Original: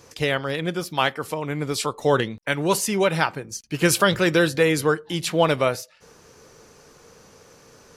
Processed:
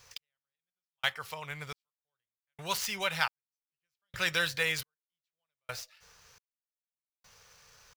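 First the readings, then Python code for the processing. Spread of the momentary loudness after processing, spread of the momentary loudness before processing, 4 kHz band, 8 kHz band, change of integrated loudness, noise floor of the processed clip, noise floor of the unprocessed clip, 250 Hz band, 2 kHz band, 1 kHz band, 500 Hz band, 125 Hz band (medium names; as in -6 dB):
20 LU, 9 LU, -8.0 dB, -13.5 dB, -10.5 dB, under -85 dBFS, -52 dBFS, -25.0 dB, -8.5 dB, -14.5 dB, -22.0 dB, -20.5 dB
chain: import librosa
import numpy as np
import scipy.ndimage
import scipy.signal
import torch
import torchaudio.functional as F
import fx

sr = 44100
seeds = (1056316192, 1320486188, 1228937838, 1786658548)

y = scipy.ndimage.median_filter(x, 5, mode='constant')
y = fx.tone_stack(y, sr, knobs='10-0-10')
y = fx.step_gate(y, sr, bpm=87, pattern='x.....xxx', floor_db=-60.0, edge_ms=4.5)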